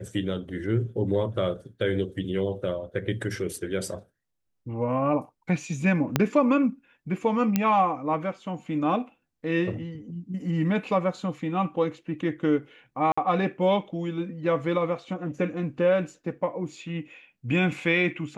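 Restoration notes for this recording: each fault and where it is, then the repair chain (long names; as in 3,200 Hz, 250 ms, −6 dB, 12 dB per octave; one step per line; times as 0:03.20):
0:06.16: click −6 dBFS
0:07.56: click −9 dBFS
0:13.12–0:13.18: drop-out 55 ms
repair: click removal
repair the gap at 0:13.12, 55 ms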